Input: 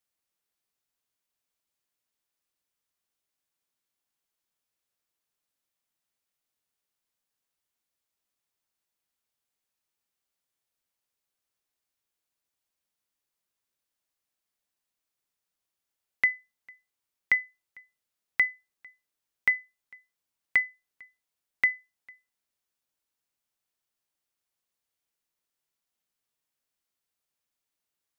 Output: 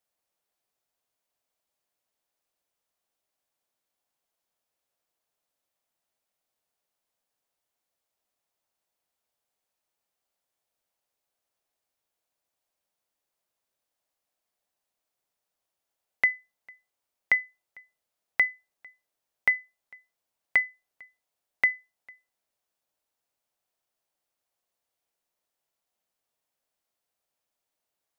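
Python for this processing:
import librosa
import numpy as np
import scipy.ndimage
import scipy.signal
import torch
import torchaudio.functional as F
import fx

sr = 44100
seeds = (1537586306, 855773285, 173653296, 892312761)

y = fx.peak_eq(x, sr, hz=660.0, db=9.0, octaves=1.1)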